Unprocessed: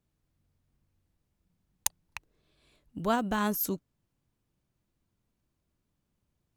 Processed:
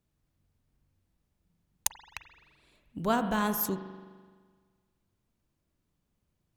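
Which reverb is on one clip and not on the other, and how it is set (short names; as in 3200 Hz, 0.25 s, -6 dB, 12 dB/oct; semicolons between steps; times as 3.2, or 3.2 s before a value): spring tank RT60 1.6 s, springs 42 ms, chirp 35 ms, DRR 8.5 dB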